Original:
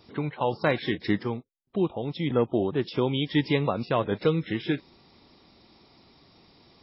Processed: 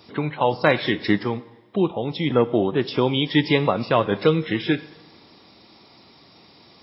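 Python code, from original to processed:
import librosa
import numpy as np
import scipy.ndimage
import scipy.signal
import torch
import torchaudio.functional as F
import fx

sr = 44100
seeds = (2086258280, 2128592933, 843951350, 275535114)

y = scipy.signal.sosfilt(scipy.signal.butter(2, 77.0, 'highpass', fs=sr, output='sos'), x)
y = fx.low_shelf(y, sr, hz=410.0, db=-4.0)
y = fx.rev_double_slope(y, sr, seeds[0], early_s=0.96, late_s=2.6, knee_db=-18, drr_db=15.0)
y = F.gain(torch.from_numpy(y), 7.5).numpy()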